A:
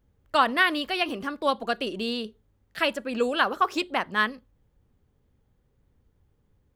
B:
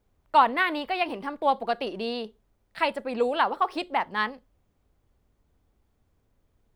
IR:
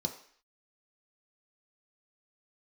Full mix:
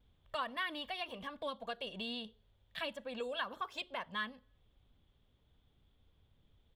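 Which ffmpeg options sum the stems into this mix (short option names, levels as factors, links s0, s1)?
-filter_complex "[0:a]flanger=delay=0.2:depth=2.1:regen=47:speed=1.4:shape=triangular,volume=0.531,asplit=2[s0][s1];[s1]volume=0.0891[s2];[1:a]acompressor=threshold=0.0251:ratio=6,lowpass=f=3400:t=q:w=7.9,adelay=2,volume=0.501[s3];[2:a]atrim=start_sample=2205[s4];[s2][s4]afir=irnorm=-1:irlink=0[s5];[s0][s3][s5]amix=inputs=3:normalize=0,acompressor=threshold=0.00355:ratio=1.5"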